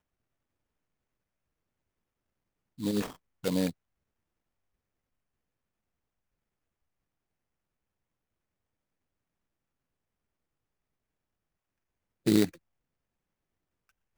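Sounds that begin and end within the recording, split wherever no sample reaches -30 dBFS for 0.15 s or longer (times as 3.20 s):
2.82–3.06 s
3.44–3.70 s
12.27–12.45 s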